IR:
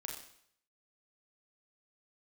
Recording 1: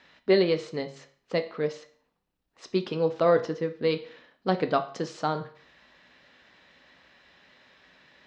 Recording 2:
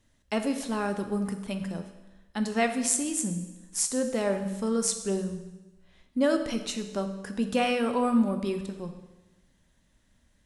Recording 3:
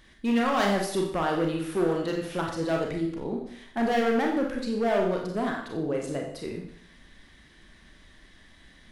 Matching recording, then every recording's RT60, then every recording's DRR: 3; 0.50, 1.1, 0.65 seconds; 7.5, 6.5, 0.0 decibels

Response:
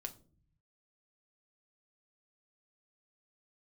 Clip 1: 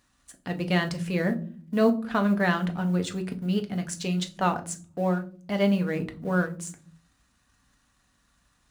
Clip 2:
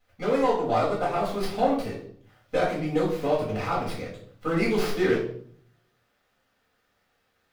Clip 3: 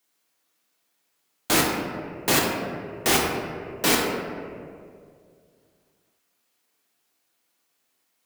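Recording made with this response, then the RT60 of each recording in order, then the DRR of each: 1; non-exponential decay, 0.60 s, 2.2 s; 5.5, −7.5, −2.0 decibels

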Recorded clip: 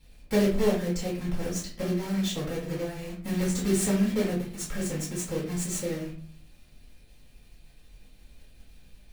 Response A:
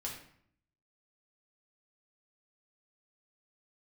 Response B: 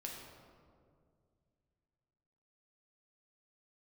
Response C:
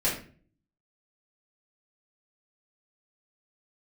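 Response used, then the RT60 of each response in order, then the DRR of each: C; 0.60, 2.2, 0.40 seconds; −3.0, −1.5, −9.0 decibels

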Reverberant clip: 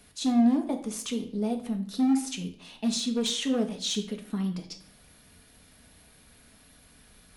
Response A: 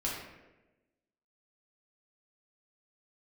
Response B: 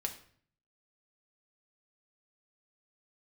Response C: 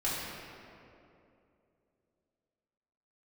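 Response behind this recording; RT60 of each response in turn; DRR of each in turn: B; 1.1, 0.55, 2.7 seconds; −5.5, 2.5, −10.0 decibels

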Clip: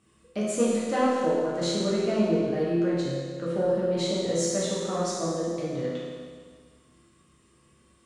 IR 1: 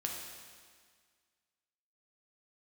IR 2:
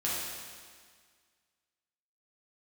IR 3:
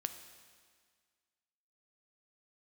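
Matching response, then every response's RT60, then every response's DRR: 2; 1.8, 1.8, 1.8 seconds; −0.5, −7.5, 8.0 decibels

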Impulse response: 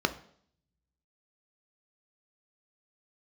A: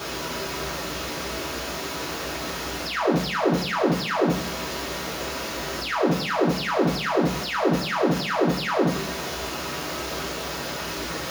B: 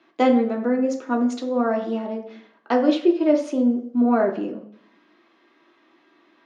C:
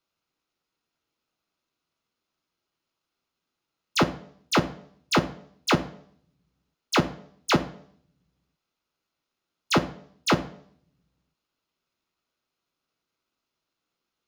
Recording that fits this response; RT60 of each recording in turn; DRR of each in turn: C; 0.60, 0.60, 0.60 seconds; −6.0, 1.5, 8.0 decibels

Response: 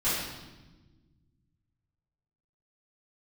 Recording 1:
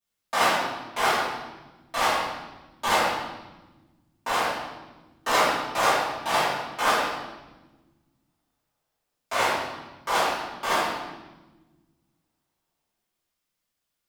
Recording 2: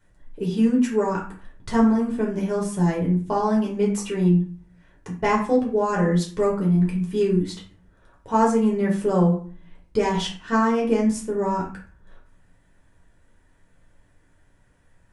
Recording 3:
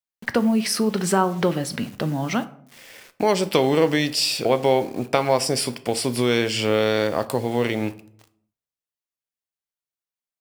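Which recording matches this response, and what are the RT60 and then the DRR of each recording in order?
1; 1.2, 0.40, 0.65 seconds; −15.0, −4.0, 11.0 decibels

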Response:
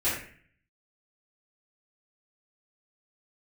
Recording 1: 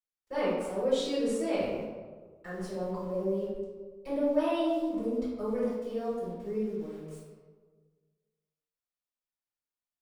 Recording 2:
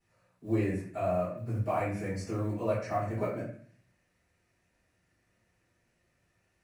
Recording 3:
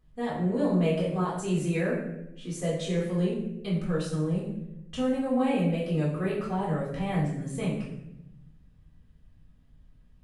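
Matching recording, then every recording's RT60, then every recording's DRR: 2; 1.5, 0.50, 0.85 seconds; −13.5, −12.5, −6.5 decibels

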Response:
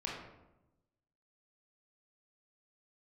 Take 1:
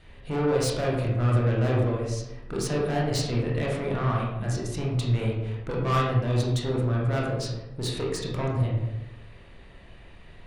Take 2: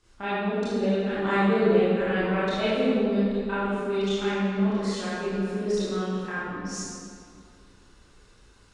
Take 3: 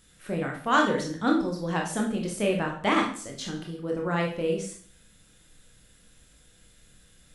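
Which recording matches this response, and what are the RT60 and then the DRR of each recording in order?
1; 0.95, 2.3, 0.50 seconds; −4.0, −12.0, −0.5 decibels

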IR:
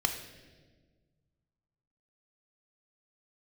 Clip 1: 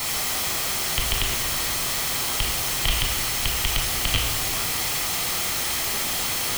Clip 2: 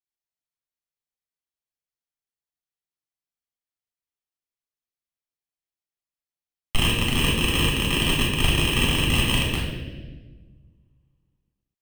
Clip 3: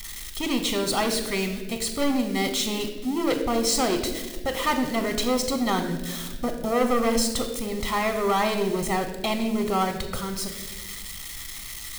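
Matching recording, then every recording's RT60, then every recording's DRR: 3; 1.5, 1.5, 1.5 seconds; 1.5, −4.0, 5.5 decibels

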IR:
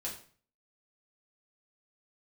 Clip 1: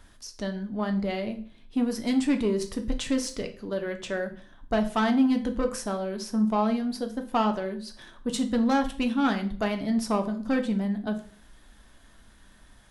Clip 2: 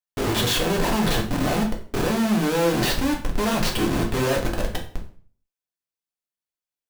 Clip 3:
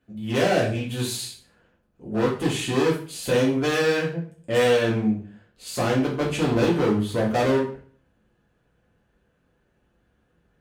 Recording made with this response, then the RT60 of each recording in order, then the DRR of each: 3; 0.45, 0.45, 0.45 seconds; 5.0, −0.5, −5.0 decibels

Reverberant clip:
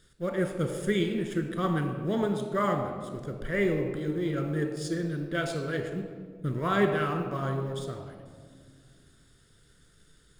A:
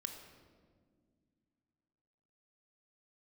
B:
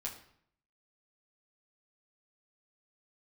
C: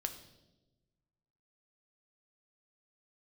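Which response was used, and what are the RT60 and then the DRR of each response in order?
A; 1.9, 0.65, 1.1 seconds; 4.5, −3.0, 6.0 decibels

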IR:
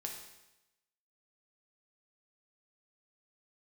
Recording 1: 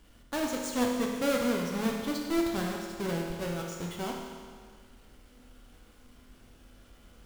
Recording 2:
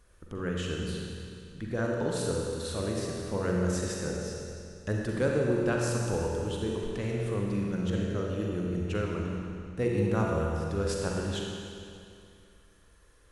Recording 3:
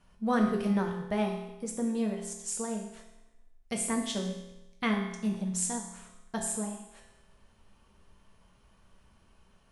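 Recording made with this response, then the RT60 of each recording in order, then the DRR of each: 3; 1.8, 2.5, 0.95 seconds; −0.5, −2.0, 0.5 decibels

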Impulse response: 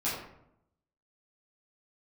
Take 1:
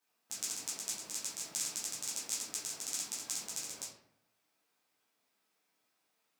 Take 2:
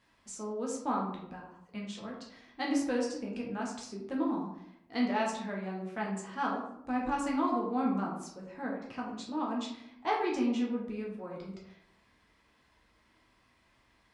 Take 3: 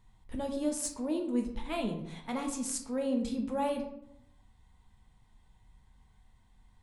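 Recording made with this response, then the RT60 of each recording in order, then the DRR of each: 1; 0.75, 0.75, 0.75 seconds; −10.5, −3.0, 2.5 decibels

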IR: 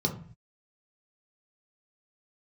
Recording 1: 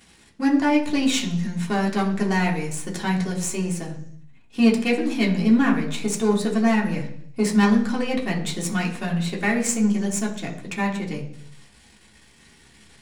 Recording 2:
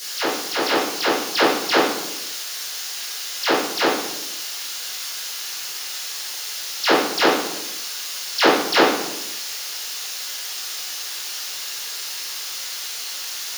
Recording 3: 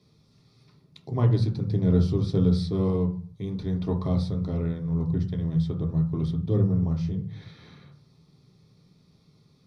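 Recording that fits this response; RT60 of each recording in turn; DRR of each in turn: 3; 0.60, 0.90, 0.45 seconds; −2.5, −12.0, 1.0 decibels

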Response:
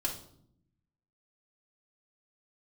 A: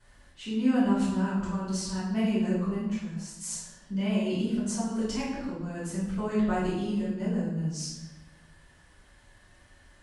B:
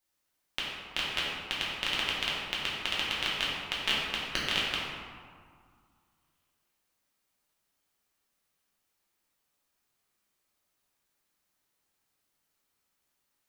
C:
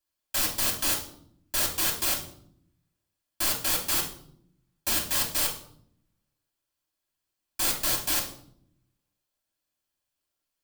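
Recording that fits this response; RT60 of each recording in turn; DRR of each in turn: C; 1.0, 2.0, 0.65 seconds; −14.5, −7.0, −1.5 decibels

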